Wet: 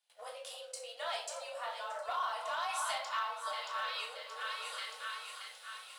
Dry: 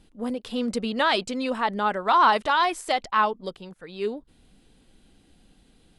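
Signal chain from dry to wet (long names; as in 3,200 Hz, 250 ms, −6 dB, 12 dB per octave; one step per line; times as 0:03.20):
echo with a time of its own for lows and highs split 1,400 Hz, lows 283 ms, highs 626 ms, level −12.5 dB
frequency shifter +36 Hz
0:00.40–0:02.69: graphic EQ with 10 bands 1,000 Hz −6 dB, 2,000 Hz −8 dB, 4,000 Hz −8 dB
downward compressor 8 to 1, threshold −41 dBFS, peak gain reduction 23.5 dB
rectangular room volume 620 cubic metres, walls furnished, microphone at 3.3 metres
noise gate with hold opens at −42 dBFS
Butterworth high-pass 500 Hz 96 dB per octave
leveller curve on the samples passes 1
tilt shelving filter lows −5 dB, about 1,500 Hz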